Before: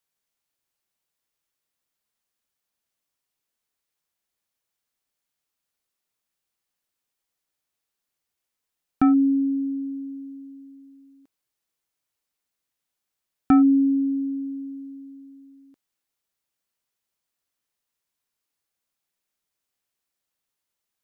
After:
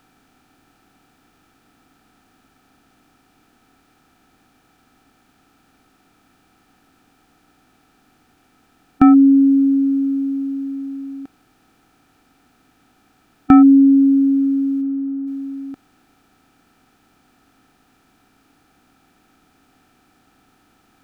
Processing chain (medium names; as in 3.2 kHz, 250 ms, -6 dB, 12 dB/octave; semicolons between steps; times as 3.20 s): spectral levelling over time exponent 0.6; 14.81–15.26 s: low-pass 1.7 kHz -> 1.3 kHz 12 dB/octave; trim +7 dB